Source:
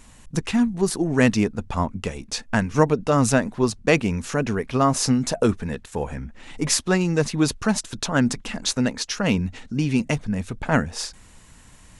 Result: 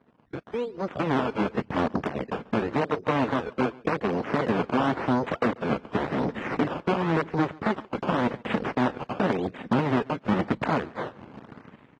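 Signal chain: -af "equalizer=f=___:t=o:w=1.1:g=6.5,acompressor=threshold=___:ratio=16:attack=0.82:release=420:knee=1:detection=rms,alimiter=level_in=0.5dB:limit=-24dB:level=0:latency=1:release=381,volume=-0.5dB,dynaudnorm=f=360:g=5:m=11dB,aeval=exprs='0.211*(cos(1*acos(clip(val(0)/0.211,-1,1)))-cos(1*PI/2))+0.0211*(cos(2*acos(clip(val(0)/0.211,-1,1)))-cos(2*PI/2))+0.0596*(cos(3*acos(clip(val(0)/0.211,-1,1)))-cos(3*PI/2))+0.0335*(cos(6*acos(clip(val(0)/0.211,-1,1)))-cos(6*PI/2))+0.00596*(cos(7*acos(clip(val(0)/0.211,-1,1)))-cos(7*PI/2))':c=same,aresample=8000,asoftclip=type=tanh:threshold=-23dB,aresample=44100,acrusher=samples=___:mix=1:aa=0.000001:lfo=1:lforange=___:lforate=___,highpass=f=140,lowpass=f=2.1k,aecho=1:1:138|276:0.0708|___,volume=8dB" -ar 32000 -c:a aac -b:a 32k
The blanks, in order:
240, -23dB, 16, 16, 0.91, 0.012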